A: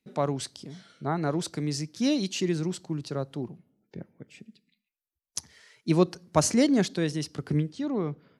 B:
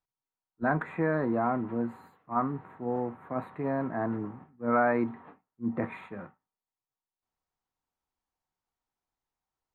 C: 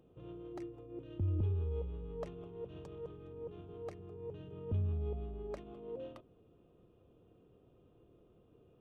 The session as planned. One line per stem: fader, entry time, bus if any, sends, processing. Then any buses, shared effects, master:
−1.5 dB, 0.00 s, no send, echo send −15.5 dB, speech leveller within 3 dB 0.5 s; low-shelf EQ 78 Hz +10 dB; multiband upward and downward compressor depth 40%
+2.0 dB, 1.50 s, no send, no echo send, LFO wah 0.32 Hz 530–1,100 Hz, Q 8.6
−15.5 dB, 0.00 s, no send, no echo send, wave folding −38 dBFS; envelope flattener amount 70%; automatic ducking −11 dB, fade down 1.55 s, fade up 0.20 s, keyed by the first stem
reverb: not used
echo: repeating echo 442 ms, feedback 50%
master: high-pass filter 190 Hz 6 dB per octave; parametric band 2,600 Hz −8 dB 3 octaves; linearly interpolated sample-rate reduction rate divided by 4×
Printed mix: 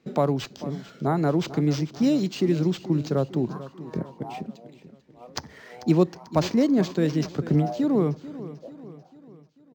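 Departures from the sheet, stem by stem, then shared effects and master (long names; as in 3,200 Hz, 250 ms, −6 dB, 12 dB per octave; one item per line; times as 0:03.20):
stem A −1.5 dB → +6.5 dB
stem B: entry 1.50 s → 2.85 s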